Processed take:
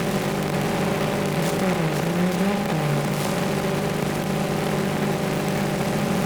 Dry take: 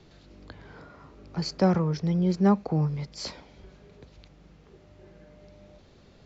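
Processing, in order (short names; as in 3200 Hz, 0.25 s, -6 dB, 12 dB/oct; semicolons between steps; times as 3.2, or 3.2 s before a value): per-bin compression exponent 0.2; limiter -14.5 dBFS, peak gain reduction 9.5 dB; on a send: flutter echo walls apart 11.6 m, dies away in 0.56 s; on the sum: noise-modulated delay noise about 1300 Hz, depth 0.12 ms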